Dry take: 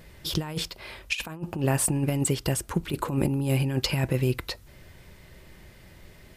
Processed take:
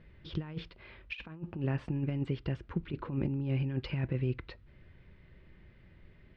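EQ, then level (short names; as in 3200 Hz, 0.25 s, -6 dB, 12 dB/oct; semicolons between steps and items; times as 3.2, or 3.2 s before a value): LPF 3100 Hz 12 dB/oct; air absorption 240 m; bell 760 Hz -8 dB 1.4 oct; -6.0 dB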